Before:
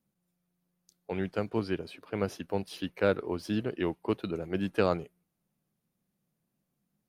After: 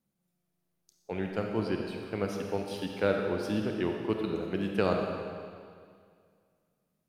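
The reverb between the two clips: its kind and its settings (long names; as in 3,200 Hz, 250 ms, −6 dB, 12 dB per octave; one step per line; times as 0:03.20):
comb and all-pass reverb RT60 2.1 s, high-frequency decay 0.95×, pre-delay 10 ms, DRR 2 dB
level −1.5 dB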